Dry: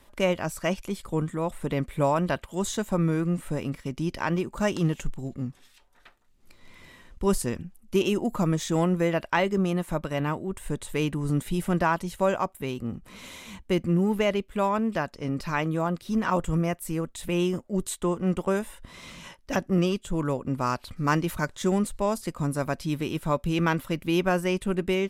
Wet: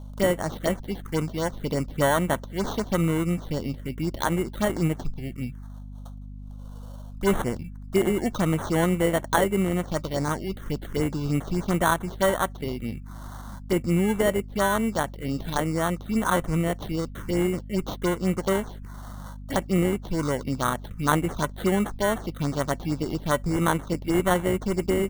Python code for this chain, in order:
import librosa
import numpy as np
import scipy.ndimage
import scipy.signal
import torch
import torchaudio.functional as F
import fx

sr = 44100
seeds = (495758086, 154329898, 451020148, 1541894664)

y = fx.low_shelf(x, sr, hz=320.0, db=-4.0)
y = fx.sample_hold(y, sr, seeds[0], rate_hz=2500.0, jitter_pct=0)
y = fx.env_phaser(y, sr, low_hz=290.0, high_hz=4900.0, full_db=-23.5)
y = fx.add_hum(y, sr, base_hz=50, snr_db=13)
y = y * 10.0 ** (3.5 / 20.0)